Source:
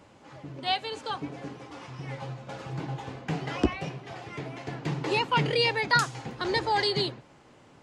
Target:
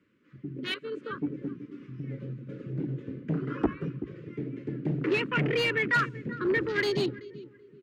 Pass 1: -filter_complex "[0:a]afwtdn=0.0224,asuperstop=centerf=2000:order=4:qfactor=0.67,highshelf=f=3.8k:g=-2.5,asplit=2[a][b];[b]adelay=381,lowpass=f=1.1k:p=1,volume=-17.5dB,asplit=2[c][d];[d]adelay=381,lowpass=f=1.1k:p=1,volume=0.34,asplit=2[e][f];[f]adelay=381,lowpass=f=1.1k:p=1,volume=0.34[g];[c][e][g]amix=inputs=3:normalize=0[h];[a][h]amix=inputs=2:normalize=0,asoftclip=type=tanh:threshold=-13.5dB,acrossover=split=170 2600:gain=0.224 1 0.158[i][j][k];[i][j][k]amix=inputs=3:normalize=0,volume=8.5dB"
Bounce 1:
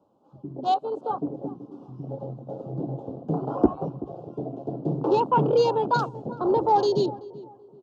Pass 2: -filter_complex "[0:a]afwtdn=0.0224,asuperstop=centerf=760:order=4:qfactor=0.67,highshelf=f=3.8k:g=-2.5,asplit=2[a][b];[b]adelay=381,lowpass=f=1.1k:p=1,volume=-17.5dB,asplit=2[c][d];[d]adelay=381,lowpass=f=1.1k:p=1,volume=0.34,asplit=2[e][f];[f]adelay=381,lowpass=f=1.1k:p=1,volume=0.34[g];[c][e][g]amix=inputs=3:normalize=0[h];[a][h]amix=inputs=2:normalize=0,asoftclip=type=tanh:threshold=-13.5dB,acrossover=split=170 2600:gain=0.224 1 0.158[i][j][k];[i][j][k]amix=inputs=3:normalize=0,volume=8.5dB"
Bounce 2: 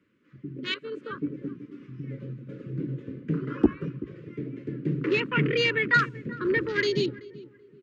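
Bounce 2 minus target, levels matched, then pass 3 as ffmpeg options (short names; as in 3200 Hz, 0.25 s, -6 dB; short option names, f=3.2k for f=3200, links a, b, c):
soft clip: distortion -13 dB
-filter_complex "[0:a]afwtdn=0.0224,asuperstop=centerf=760:order=4:qfactor=0.67,highshelf=f=3.8k:g=-2.5,asplit=2[a][b];[b]adelay=381,lowpass=f=1.1k:p=1,volume=-17.5dB,asplit=2[c][d];[d]adelay=381,lowpass=f=1.1k:p=1,volume=0.34,asplit=2[e][f];[f]adelay=381,lowpass=f=1.1k:p=1,volume=0.34[g];[c][e][g]amix=inputs=3:normalize=0[h];[a][h]amix=inputs=2:normalize=0,asoftclip=type=tanh:threshold=-25.5dB,acrossover=split=170 2600:gain=0.224 1 0.158[i][j][k];[i][j][k]amix=inputs=3:normalize=0,volume=8.5dB"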